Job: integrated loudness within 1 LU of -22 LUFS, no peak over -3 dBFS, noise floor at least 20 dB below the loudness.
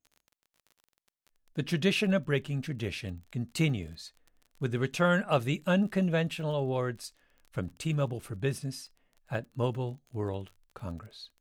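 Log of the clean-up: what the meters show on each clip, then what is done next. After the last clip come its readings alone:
tick rate 29 per s; loudness -31.5 LUFS; peak level -13.0 dBFS; loudness target -22.0 LUFS
-> de-click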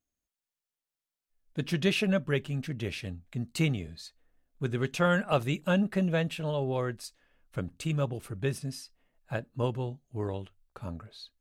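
tick rate 0 per s; loudness -31.5 LUFS; peak level -13.0 dBFS; loudness target -22.0 LUFS
-> trim +9.5 dB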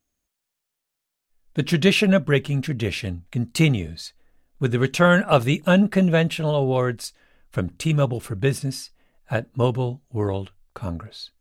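loudness -22.0 LUFS; peak level -3.5 dBFS; noise floor -82 dBFS

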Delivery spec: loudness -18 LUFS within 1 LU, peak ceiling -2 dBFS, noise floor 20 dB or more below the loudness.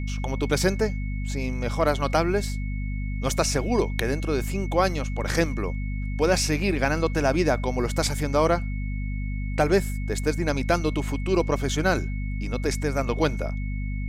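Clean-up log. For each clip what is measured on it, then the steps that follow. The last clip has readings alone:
hum 50 Hz; highest harmonic 250 Hz; hum level -26 dBFS; steady tone 2.2 kHz; tone level -42 dBFS; loudness -25.5 LUFS; peak level -7.5 dBFS; loudness target -18.0 LUFS
-> hum notches 50/100/150/200/250 Hz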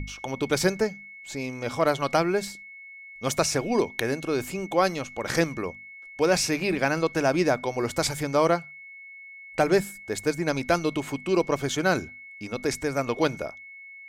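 hum not found; steady tone 2.2 kHz; tone level -42 dBFS
-> band-stop 2.2 kHz, Q 30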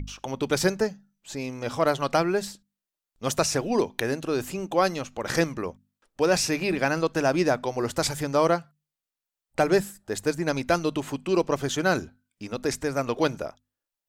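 steady tone not found; loudness -26.0 LUFS; peak level -8.0 dBFS; loudness target -18.0 LUFS
-> trim +8 dB; peak limiter -2 dBFS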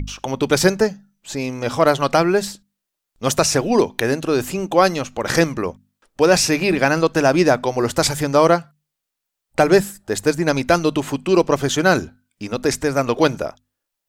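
loudness -18.5 LUFS; peak level -2.0 dBFS; noise floor -81 dBFS

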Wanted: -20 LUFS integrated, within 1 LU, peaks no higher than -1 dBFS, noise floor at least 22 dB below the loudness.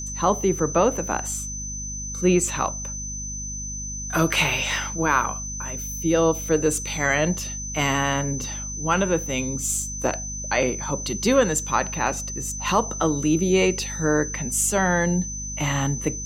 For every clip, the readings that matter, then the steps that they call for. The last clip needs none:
hum 50 Hz; highest harmonic 250 Hz; hum level -33 dBFS; steady tone 6.1 kHz; tone level -31 dBFS; loudness -23.5 LUFS; peak level -6.5 dBFS; loudness target -20.0 LUFS
-> de-hum 50 Hz, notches 5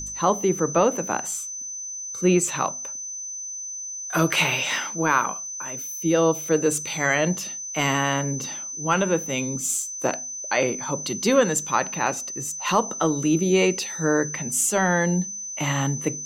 hum not found; steady tone 6.1 kHz; tone level -31 dBFS
-> band-stop 6.1 kHz, Q 30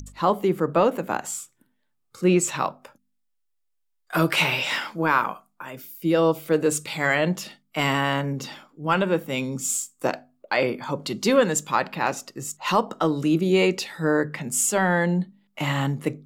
steady tone not found; loudness -24.0 LUFS; peak level -7.0 dBFS; loudness target -20.0 LUFS
-> trim +4 dB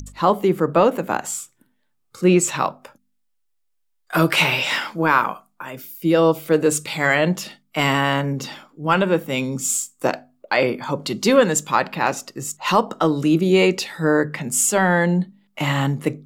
loudness -20.0 LUFS; peak level -3.0 dBFS; noise floor -68 dBFS

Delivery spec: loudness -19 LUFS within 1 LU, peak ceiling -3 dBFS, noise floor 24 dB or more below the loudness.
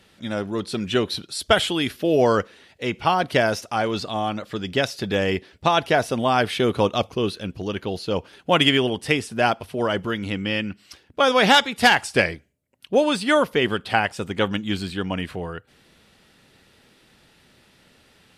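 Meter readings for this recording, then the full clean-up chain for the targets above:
loudness -22.0 LUFS; peak level -3.5 dBFS; loudness target -19.0 LUFS
-> trim +3 dB; peak limiter -3 dBFS

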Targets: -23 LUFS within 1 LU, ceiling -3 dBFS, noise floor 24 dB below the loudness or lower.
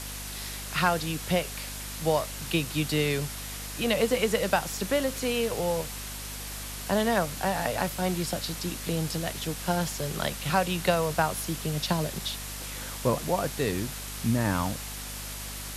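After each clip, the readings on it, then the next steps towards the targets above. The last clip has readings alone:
hum 50 Hz; highest harmonic 250 Hz; hum level -39 dBFS; noise floor -38 dBFS; noise floor target -53 dBFS; loudness -29.0 LUFS; peak level -10.5 dBFS; loudness target -23.0 LUFS
-> de-hum 50 Hz, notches 5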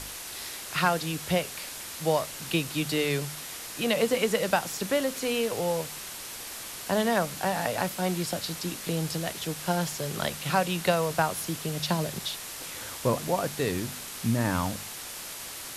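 hum not found; noise floor -40 dBFS; noise floor target -53 dBFS
-> noise print and reduce 13 dB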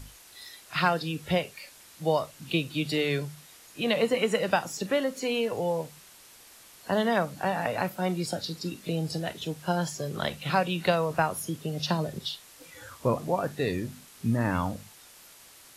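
noise floor -53 dBFS; loudness -29.0 LUFS; peak level -10.5 dBFS; loudness target -23.0 LUFS
-> trim +6 dB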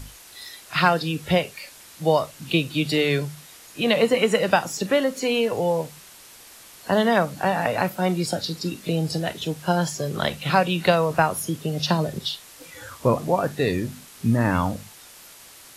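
loudness -23.0 LUFS; peak level -4.5 dBFS; noise floor -47 dBFS

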